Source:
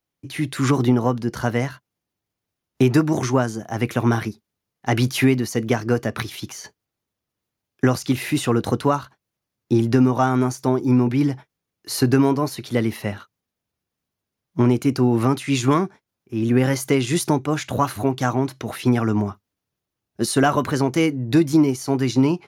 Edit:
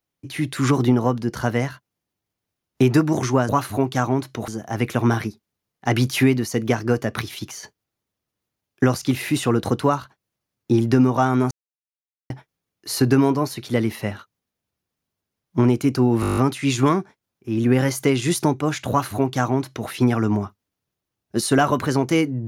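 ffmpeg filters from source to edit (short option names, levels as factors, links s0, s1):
-filter_complex "[0:a]asplit=13[s0][s1][s2][s3][s4][s5][s6][s7][s8][s9][s10][s11][s12];[s0]atrim=end=3.492[s13];[s1]atrim=start=17.748:end=18.742[s14];[s2]atrim=start=3.488:end=10.52,asetpts=PTS-STARTPTS,afade=t=out:st=7.028:d=0.004:c=hsin[s15];[s3]atrim=start=10.52:end=11.31,asetpts=PTS-STARTPTS,volume=0[s16];[s4]atrim=start=11.31:end=15.242,asetpts=PTS-STARTPTS,afade=t=in:d=0.004:c=hsin[s17];[s5]atrim=start=15.218:end=15.242[s18];[s6]atrim=start=15.218:end=15.242[s19];[s7]atrim=start=15.218:end=15.242[s20];[s8]atrim=start=15.218:end=15.242[s21];[s9]atrim=start=15.218:end=15.242[s22];[s10]atrim=start=15.218:end=15.242[s23];[s11]atrim=start=15.218:end=15.242[s24];[s12]atrim=start=15.218[s25];[s13][s14]acrossfade=d=0.004:c1=hsin:c2=hsin[s26];[s15][s16][s17]concat=n=3:v=0:a=1[s27];[s26][s27]acrossfade=d=0.004:c1=hsin:c2=hsin[s28];[s28][s18]acrossfade=d=0.004:c1=hsin:c2=hsin[s29];[s29][s19]acrossfade=d=0.004:c1=hsin:c2=hsin[s30];[s30][s20]acrossfade=d=0.004:c1=hsin:c2=hsin[s31];[s31][s21]acrossfade=d=0.004:c1=hsin:c2=hsin[s32];[s32][s22]acrossfade=d=0.004:c1=hsin:c2=hsin[s33];[s33][s23]acrossfade=d=0.004:c1=hsin:c2=hsin[s34];[s34][s24]acrossfade=d=0.004:c1=hsin:c2=hsin[s35];[s35][s25]acrossfade=d=0.004:c1=hsin:c2=hsin"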